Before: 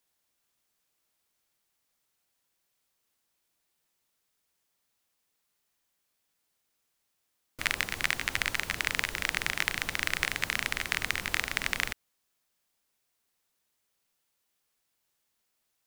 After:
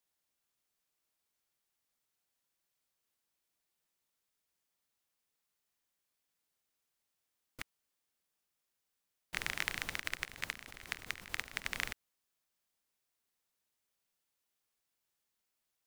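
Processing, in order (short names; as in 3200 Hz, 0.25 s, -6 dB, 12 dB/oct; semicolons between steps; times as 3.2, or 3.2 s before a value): 7.62–9.33 room tone; 9.99–11.74 level quantiser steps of 15 dB; gain -7 dB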